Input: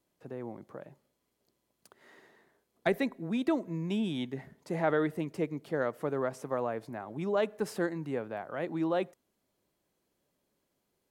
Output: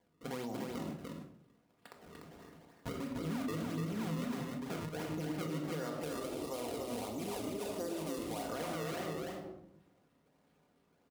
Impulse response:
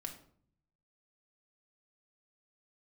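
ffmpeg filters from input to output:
-filter_complex "[0:a]acrusher=samples=32:mix=1:aa=0.000001:lfo=1:lforange=51.2:lforate=1.5,asettb=1/sr,asplit=3[a][b][c];[a]atrim=end=5.984[d];[b]atrim=start=5.98:end=8.43,asetpts=PTS-STARTPTS,afade=t=in:d=0.004:c=qsin,afade=t=out:st=2.446:d=0.004:c=qsin,equalizer=f=160:t=o:w=0.67:g=-11,equalizer=f=1.6k:t=o:w=0.67:g=-12,equalizer=f=10k:t=o:w=0.67:g=5[e];[c]atrim=start=8.426[f];[d][e]acrossfade=d=0.004:c1=hsin:c2=qsin[g];[g][f]acrossfade=d=0.004:c1=qsin:c2=hsin[h];[1:a]atrim=start_sample=2205[i];[h][i]afir=irnorm=-1:irlink=0,acompressor=threshold=-41dB:ratio=6,alimiter=level_in=15.5dB:limit=-24dB:level=0:latency=1:release=33,volume=-15.5dB,highpass=70,equalizer=f=880:t=o:w=0.77:g=3,aecho=1:1:295:0.668,volume=7dB"

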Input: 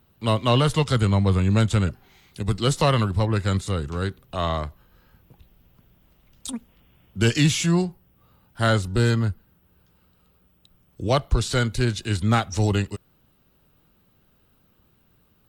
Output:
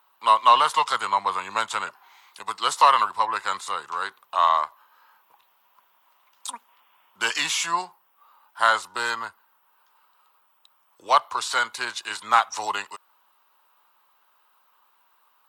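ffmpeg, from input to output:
-af "highpass=f=990:t=q:w=4.9"

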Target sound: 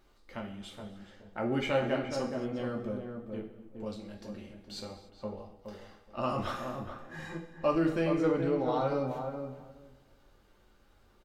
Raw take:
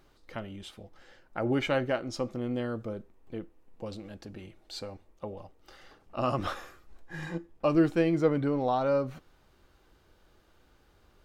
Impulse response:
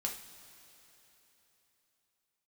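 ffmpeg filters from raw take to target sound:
-filter_complex "[0:a]asplit=2[a][b];[b]adelay=420,lowpass=f=1k:p=1,volume=-5dB,asplit=2[c][d];[d]adelay=420,lowpass=f=1k:p=1,volume=0.16,asplit=2[e][f];[f]adelay=420,lowpass=f=1k:p=1,volume=0.16[g];[a][c][e][g]amix=inputs=4:normalize=0[h];[1:a]atrim=start_sample=2205,afade=t=out:st=0.35:d=0.01,atrim=end_sample=15876[i];[h][i]afir=irnorm=-1:irlink=0,volume=-3dB"

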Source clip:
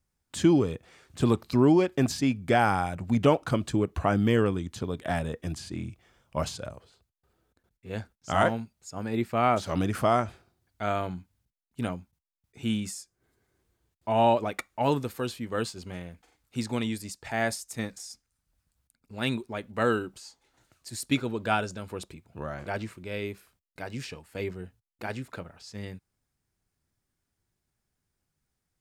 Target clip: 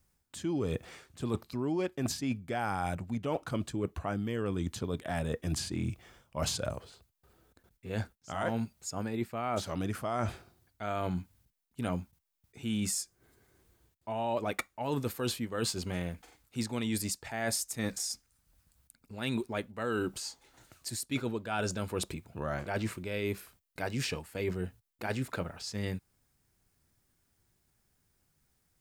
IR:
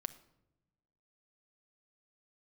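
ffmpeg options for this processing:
-af "highshelf=f=12k:g=7.5,areverse,acompressor=threshold=-35dB:ratio=20,areverse,volume=6dB"

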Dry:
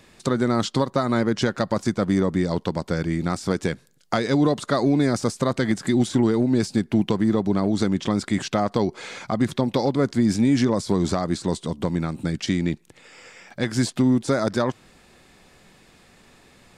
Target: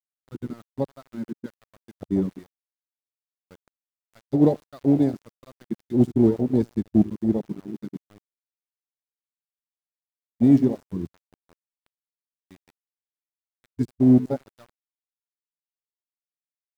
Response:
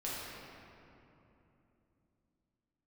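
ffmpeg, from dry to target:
-filter_complex "[0:a]aeval=exprs='val(0)+0.5*0.0631*sgn(val(0))':c=same,asettb=1/sr,asplit=3[a][b][c];[a]atrim=end=8.174[d];[b]atrim=start=8.17:end=10.33,asetpts=PTS-STARTPTS,afade=t=in:d=0.004:c=qsin,afade=t=out:st=2.156:d=0.004:c=qsin,acompressor=threshold=-21dB:ratio=2.5[e];[c]atrim=start=10.326[f];[d][e]acrossfade=d=0.004:c1=hsin:c2=qsin[g];[g][f]acrossfade=d=0.004:c1=qsin:c2=hsin,agate=range=-31dB:threshold=-15dB:ratio=16:detection=peak,aecho=1:1:79|158|237|316:0.158|0.0745|0.035|0.0165,aeval=exprs='val(0)*gte(abs(val(0)),0.0141)':c=same,afwtdn=0.0708,volume=6dB"

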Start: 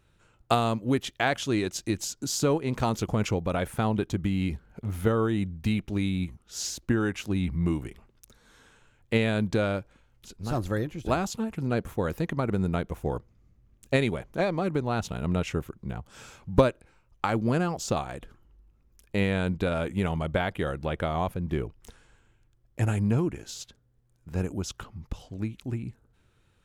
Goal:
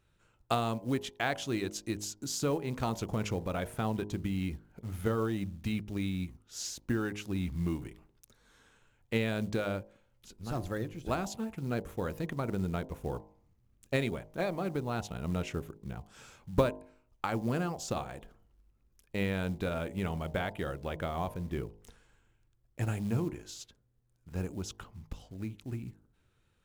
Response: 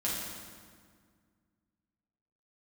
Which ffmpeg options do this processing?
-af "acrusher=bits=7:mode=log:mix=0:aa=0.000001,bandreject=f=51.8:t=h:w=4,bandreject=f=103.6:t=h:w=4,bandreject=f=155.4:t=h:w=4,bandreject=f=207.2:t=h:w=4,bandreject=f=259:t=h:w=4,bandreject=f=310.8:t=h:w=4,bandreject=f=362.6:t=h:w=4,bandreject=f=414.4:t=h:w=4,bandreject=f=466.2:t=h:w=4,bandreject=f=518:t=h:w=4,bandreject=f=569.8:t=h:w=4,bandreject=f=621.6:t=h:w=4,bandreject=f=673.4:t=h:w=4,bandreject=f=725.2:t=h:w=4,bandreject=f=777:t=h:w=4,bandreject=f=828.8:t=h:w=4,bandreject=f=880.6:t=h:w=4,bandreject=f=932.4:t=h:w=4,bandreject=f=984.2:t=h:w=4,bandreject=f=1.036k:t=h:w=4,volume=-6dB"

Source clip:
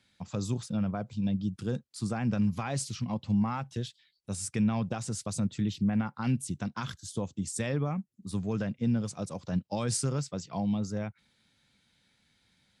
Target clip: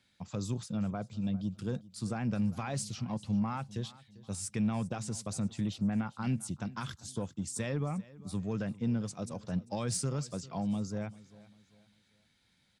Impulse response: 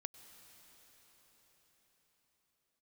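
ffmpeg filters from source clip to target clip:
-filter_complex "[0:a]asplit=2[a][b];[b]asoftclip=type=tanh:threshold=-30dB,volume=-9dB[c];[a][c]amix=inputs=2:normalize=0,aecho=1:1:396|792|1188:0.1|0.037|0.0137,volume=-5dB"

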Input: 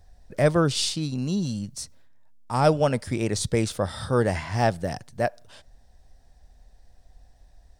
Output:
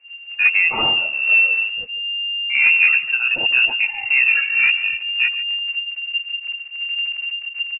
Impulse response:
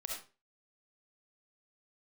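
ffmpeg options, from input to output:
-filter_complex "[0:a]afftdn=nr=15:nf=-36,aecho=1:1:4.9:0.79,asubboost=boost=5:cutoff=130,asplit=2[a][b];[b]alimiter=limit=-15dB:level=0:latency=1:release=51,volume=-2dB[c];[a][c]amix=inputs=2:normalize=0,aphaser=in_gain=1:out_gain=1:delay=4.3:decay=0.29:speed=0.68:type=sinusoidal,acrusher=bits=5:mode=log:mix=0:aa=0.000001,asetrate=24046,aresample=44100,atempo=1.83401,asoftclip=type=hard:threshold=-9dB,asplit=2[d][e];[e]aecho=0:1:143|286|429:0.178|0.0462|0.012[f];[d][f]amix=inputs=2:normalize=0,lowpass=f=2.4k:t=q:w=0.5098,lowpass=f=2.4k:t=q:w=0.6013,lowpass=f=2.4k:t=q:w=0.9,lowpass=f=2.4k:t=q:w=2.563,afreqshift=-2800"

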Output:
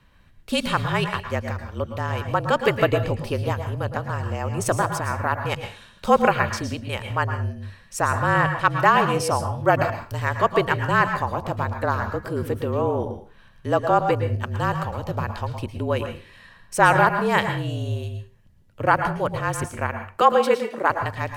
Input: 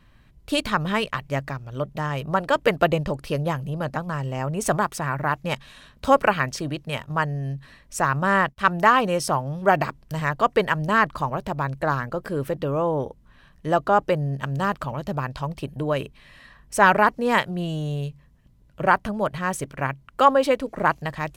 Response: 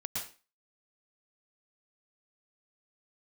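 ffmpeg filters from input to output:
-filter_complex "[0:a]asettb=1/sr,asplit=3[a][b][c];[a]atrim=end=20.214[d];[b]atrim=start=20.21:end=20.9,asetpts=PTS-STARTPTS,afade=t=in:d=0.004:c=qsin,afade=t=out:st=0.686:d=0.004:c=qsin,highpass=f=310:w=0.5412,highpass=f=310:w=1.3066[e];[c]atrim=start=20.896[f];[d][e]acrossfade=d=0.004:c1=hsin:c2=qsin[g];[g][f]acrossfade=d=0.004:c1=qsin:c2=hsin,afreqshift=-40,asplit=2[h][i];[1:a]atrim=start_sample=2205[j];[i][j]afir=irnorm=-1:irlink=0,volume=-5dB[k];[h][k]amix=inputs=2:normalize=0,volume=-3dB"

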